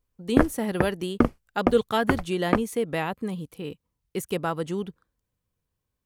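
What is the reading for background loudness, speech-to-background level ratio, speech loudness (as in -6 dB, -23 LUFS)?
-28.5 LUFS, 0.0 dB, -28.5 LUFS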